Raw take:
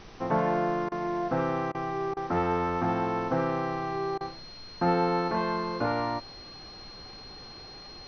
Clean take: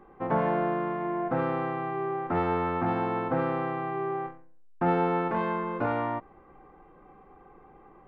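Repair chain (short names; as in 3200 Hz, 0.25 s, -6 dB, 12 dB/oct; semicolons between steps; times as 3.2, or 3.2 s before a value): notch 4200 Hz, Q 30; interpolate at 0.89/1.72/2.14/4.18, 26 ms; noise print and reduce 9 dB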